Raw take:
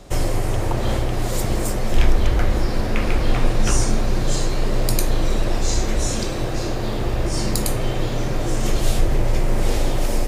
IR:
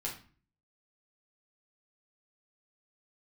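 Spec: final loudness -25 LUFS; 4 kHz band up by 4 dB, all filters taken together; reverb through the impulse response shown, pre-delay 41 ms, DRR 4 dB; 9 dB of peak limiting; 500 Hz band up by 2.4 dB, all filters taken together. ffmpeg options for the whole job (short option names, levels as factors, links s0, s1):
-filter_complex "[0:a]equalizer=f=500:t=o:g=3,equalizer=f=4000:t=o:g=5,alimiter=limit=0.266:level=0:latency=1,asplit=2[s0][s1];[1:a]atrim=start_sample=2205,adelay=41[s2];[s1][s2]afir=irnorm=-1:irlink=0,volume=0.531[s3];[s0][s3]amix=inputs=2:normalize=0,volume=0.75"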